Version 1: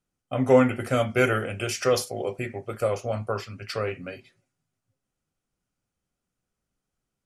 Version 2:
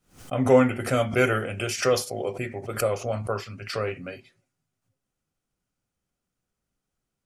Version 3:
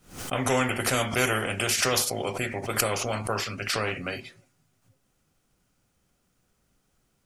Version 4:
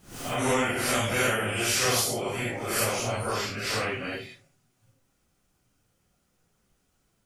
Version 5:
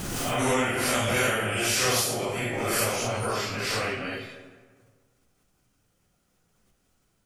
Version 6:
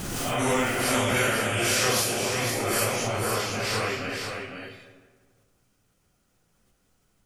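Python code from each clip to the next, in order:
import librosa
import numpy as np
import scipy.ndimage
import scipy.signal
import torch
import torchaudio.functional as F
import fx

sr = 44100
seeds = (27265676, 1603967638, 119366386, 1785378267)

y1 = fx.pre_swell(x, sr, db_per_s=150.0)
y2 = fx.spectral_comp(y1, sr, ratio=2.0)
y3 = fx.phase_scramble(y2, sr, seeds[0], window_ms=200)
y4 = fx.rev_freeverb(y3, sr, rt60_s=1.6, hf_ratio=0.5, predelay_ms=70, drr_db=11.0)
y4 = fx.pre_swell(y4, sr, db_per_s=22.0)
y5 = y4 + 10.0 ** (-6.0 / 20.0) * np.pad(y4, (int(505 * sr / 1000.0), 0))[:len(y4)]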